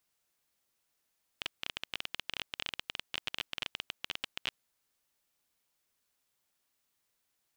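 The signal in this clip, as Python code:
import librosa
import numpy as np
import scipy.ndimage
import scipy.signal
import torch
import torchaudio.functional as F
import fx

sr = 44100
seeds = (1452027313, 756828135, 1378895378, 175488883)

y = fx.geiger_clicks(sr, seeds[0], length_s=3.19, per_s=18.0, level_db=-17.0)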